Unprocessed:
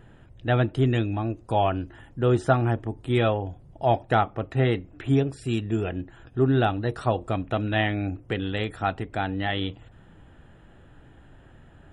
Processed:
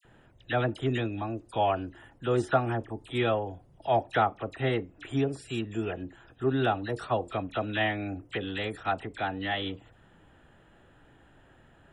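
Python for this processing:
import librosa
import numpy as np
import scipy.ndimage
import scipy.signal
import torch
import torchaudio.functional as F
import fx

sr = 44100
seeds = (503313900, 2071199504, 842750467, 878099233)

y = fx.low_shelf(x, sr, hz=230.0, db=-9.0)
y = fx.dispersion(y, sr, late='lows', ms=50.0, hz=1800.0)
y = y * librosa.db_to_amplitude(-2.0)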